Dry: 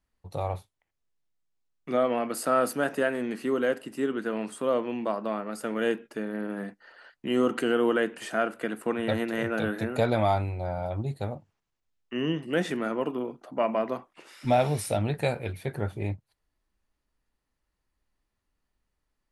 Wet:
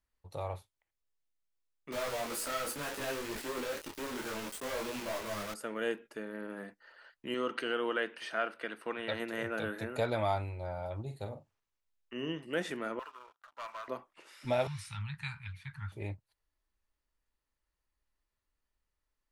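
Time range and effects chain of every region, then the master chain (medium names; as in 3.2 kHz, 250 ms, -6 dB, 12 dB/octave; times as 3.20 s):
1.92–5.54 s: hum notches 60/120/180/240/300/360/420/480/540 Hz + companded quantiser 2-bit + detune thickener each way 25 cents
7.34–9.20 s: Savitzky-Golay filter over 15 samples + tilt EQ +2 dB/octave
11.02–12.29 s: dynamic bell 1.7 kHz, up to -5 dB, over -51 dBFS, Q 0.94 + doubling 45 ms -9 dB
12.99–13.88 s: ladder band-pass 1.6 kHz, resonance 55% + waveshaping leveller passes 3
14.67–15.92 s: inverse Chebyshev band-stop 270–680 Hz + distance through air 76 m
whole clip: peaking EQ 190 Hz -7 dB 1.8 oct; band-stop 740 Hz, Q 12; trim -5 dB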